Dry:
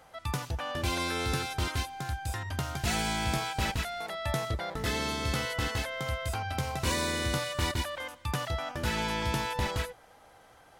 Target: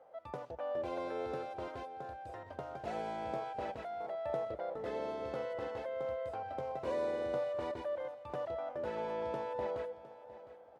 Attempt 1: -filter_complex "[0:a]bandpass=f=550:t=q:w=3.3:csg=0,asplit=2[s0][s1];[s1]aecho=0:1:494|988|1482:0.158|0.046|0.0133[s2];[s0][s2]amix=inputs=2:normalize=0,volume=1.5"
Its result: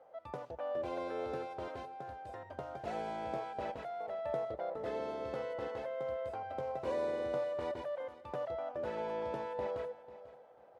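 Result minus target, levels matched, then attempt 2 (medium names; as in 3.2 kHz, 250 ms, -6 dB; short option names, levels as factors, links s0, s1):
echo 215 ms early
-filter_complex "[0:a]bandpass=f=550:t=q:w=3.3:csg=0,asplit=2[s0][s1];[s1]aecho=0:1:709|1418|2127:0.158|0.046|0.0133[s2];[s0][s2]amix=inputs=2:normalize=0,volume=1.5"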